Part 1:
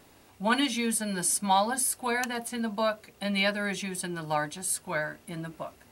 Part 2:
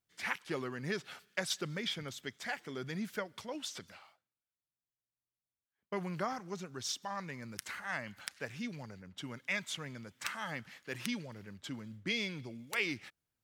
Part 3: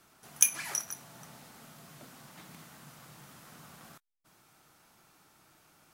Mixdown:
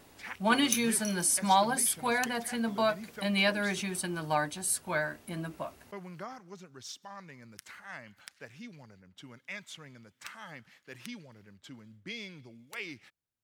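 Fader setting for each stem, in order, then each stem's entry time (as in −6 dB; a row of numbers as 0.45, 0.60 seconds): −0.5, −6.0, −8.0 decibels; 0.00, 0.00, 0.30 seconds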